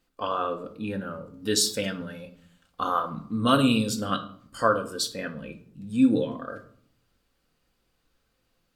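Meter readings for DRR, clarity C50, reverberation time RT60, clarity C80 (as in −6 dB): 4.5 dB, 13.0 dB, 0.60 s, 17.0 dB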